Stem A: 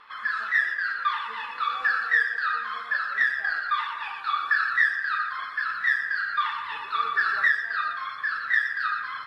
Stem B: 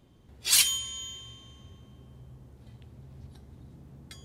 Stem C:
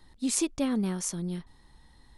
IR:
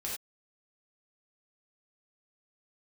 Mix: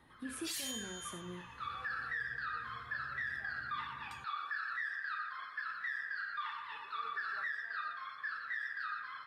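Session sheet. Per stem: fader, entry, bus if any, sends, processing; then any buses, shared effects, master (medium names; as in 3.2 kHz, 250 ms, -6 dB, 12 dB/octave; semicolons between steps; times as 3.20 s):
1.19 s -23.5 dB -> 1.82 s -12.5 dB, 0.00 s, no send, none
-10.5 dB, 0.00 s, send -12.5 dB, none
-4.5 dB, 0.00 s, send -4.5 dB, high-order bell 5.6 kHz -13 dB 1.2 oct; compression 6:1, threshold -38 dBFS, peak gain reduction 14 dB; tone controls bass -8 dB, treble -4 dB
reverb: on, pre-delay 3 ms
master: high-pass 50 Hz; peaking EQ 520 Hz +2.5 dB 0.22 oct; peak limiter -31 dBFS, peak gain reduction 14.5 dB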